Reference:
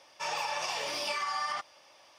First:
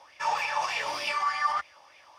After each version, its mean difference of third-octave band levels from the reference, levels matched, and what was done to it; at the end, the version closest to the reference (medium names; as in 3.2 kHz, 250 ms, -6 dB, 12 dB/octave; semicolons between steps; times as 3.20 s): 5.0 dB: peaking EQ 68 Hz +14.5 dB 1.1 oct; sweeping bell 3.3 Hz 860–2400 Hz +15 dB; trim -2.5 dB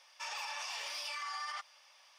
6.5 dB: high-pass 1.1 kHz 12 dB/octave; peak limiter -30 dBFS, peak gain reduction 6 dB; trim -2 dB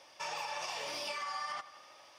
2.5 dB: compression 2:1, threshold -41 dBFS, peak gain reduction 7 dB; on a send: tape echo 81 ms, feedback 79%, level -17 dB, low-pass 6 kHz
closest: third